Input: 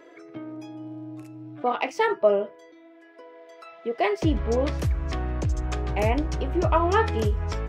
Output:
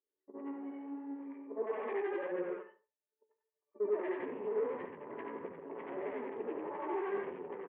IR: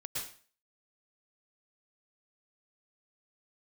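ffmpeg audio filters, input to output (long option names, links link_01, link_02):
-filter_complex "[0:a]afftfilt=real='re':imag='-im':win_size=8192:overlap=0.75,agate=range=-47dB:threshold=-44dB:ratio=16:detection=peak,acompressor=threshold=-28dB:ratio=5,alimiter=level_in=3dB:limit=-24dB:level=0:latency=1:release=60,volume=-3dB,aresample=8000,asoftclip=type=hard:threshold=-37.5dB,aresample=44100,acrossover=split=1000[link_01][link_02];[link_02]adelay=100[link_03];[link_01][link_03]amix=inputs=2:normalize=0,asoftclip=type=tanh:threshold=-36dB,flanger=delay=9.4:depth=5.6:regen=40:speed=1.6:shape=triangular,asetrate=39289,aresample=44100,atempo=1.12246,highpass=frequency=250:width=0.5412,highpass=frequency=250:width=1.3066,equalizer=frequency=290:width_type=q:width=4:gain=-6,equalizer=frequency=420:width_type=q:width=4:gain=9,equalizer=frequency=670:width_type=q:width=4:gain=-6,equalizer=frequency=960:width_type=q:width=4:gain=7,equalizer=frequency=1400:width_type=q:width=4:gain=-7,equalizer=frequency=1900:width_type=q:width=4:gain=3,lowpass=frequency=2100:width=0.5412,lowpass=frequency=2100:width=1.3066,asplit=2[link_04][link_05];[link_05]adelay=71,lowpass=frequency=1500:poles=1,volume=-11dB,asplit=2[link_06][link_07];[link_07]adelay=71,lowpass=frequency=1500:poles=1,volume=0.3,asplit=2[link_08][link_09];[link_09]adelay=71,lowpass=frequency=1500:poles=1,volume=0.3[link_10];[link_06][link_08][link_10]amix=inputs=3:normalize=0[link_11];[link_04][link_11]amix=inputs=2:normalize=0,volume=7.5dB"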